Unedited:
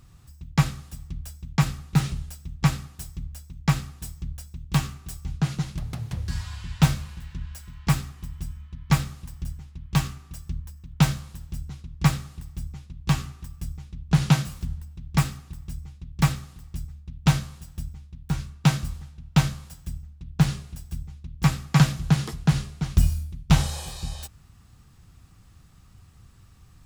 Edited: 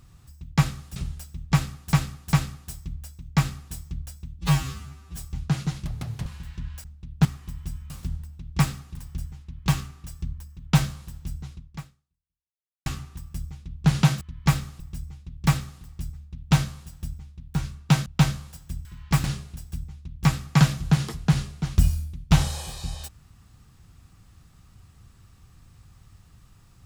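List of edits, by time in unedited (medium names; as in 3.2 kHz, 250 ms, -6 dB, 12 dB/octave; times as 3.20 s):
0.96–2.07 s: delete
2.64–3.04 s: loop, 3 plays
4.70–5.09 s: stretch 2×
6.18–7.03 s: delete
7.61–8.00 s: swap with 20.02–20.43 s
8.65–9.24 s: swap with 14.48–15.55 s
11.83–13.13 s: fade out exponential
18.81–19.23 s: delete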